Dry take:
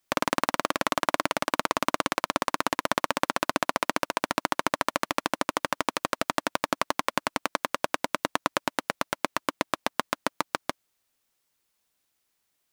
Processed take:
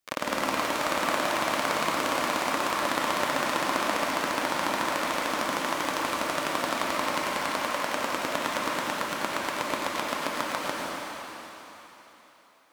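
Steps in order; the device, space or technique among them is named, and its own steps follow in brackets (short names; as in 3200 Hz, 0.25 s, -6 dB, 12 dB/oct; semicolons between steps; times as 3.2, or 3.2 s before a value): shimmer-style reverb (harmoniser +12 st -8 dB; reverb RT60 3.7 s, pre-delay 86 ms, DRR -5 dB); gain -6 dB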